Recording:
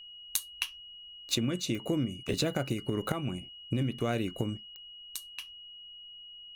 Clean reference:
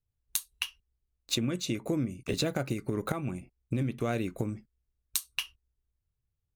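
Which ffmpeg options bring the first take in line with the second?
-af "adeclick=t=4,bandreject=f=2.9k:w=30,agate=range=-21dB:threshold=-41dB,asetnsamples=n=441:p=0,asendcmd='4.57 volume volume 9.5dB',volume=0dB"

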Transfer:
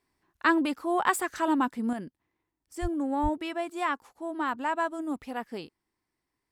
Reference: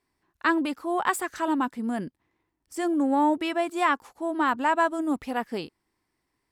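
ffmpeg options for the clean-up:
-filter_complex "[0:a]asplit=3[a][b][c];[a]afade=t=out:st=2.81:d=0.02[d];[b]highpass=f=140:w=0.5412,highpass=f=140:w=1.3066,afade=t=in:st=2.81:d=0.02,afade=t=out:st=2.93:d=0.02[e];[c]afade=t=in:st=2.93:d=0.02[f];[d][e][f]amix=inputs=3:normalize=0,asplit=3[g][h][i];[g]afade=t=out:st=3.22:d=0.02[j];[h]highpass=f=140:w=0.5412,highpass=f=140:w=1.3066,afade=t=in:st=3.22:d=0.02,afade=t=out:st=3.34:d=0.02[k];[i]afade=t=in:st=3.34:d=0.02[l];[j][k][l]amix=inputs=3:normalize=0,asetnsamples=n=441:p=0,asendcmd='1.93 volume volume 6dB',volume=0dB"

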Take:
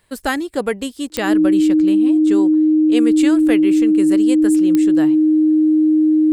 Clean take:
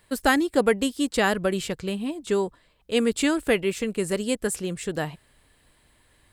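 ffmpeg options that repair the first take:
-af "adeclick=t=4,bandreject=f=310:w=30"

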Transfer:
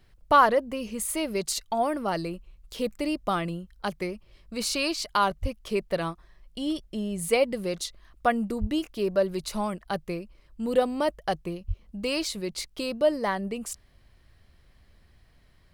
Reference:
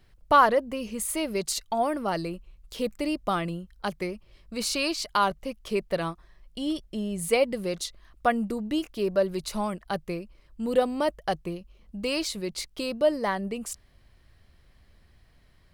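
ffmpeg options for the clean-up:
-filter_complex "[0:a]asplit=3[a][b][c];[a]afade=t=out:st=5.41:d=0.02[d];[b]highpass=f=140:w=0.5412,highpass=f=140:w=1.3066,afade=t=in:st=5.41:d=0.02,afade=t=out:st=5.53:d=0.02[e];[c]afade=t=in:st=5.53:d=0.02[f];[d][e][f]amix=inputs=3:normalize=0,asplit=3[g][h][i];[g]afade=t=out:st=8.6:d=0.02[j];[h]highpass=f=140:w=0.5412,highpass=f=140:w=1.3066,afade=t=in:st=8.6:d=0.02,afade=t=out:st=8.72:d=0.02[k];[i]afade=t=in:st=8.72:d=0.02[l];[j][k][l]amix=inputs=3:normalize=0,asplit=3[m][n][o];[m]afade=t=out:st=11.67:d=0.02[p];[n]highpass=f=140:w=0.5412,highpass=f=140:w=1.3066,afade=t=in:st=11.67:d=0.02,afade=t=out:st=11.79:d=0.02[q];[o]afade=t=in:st=11.79:d=0.02[r];[p][q][r]amix=inputs=3:normalize=0"

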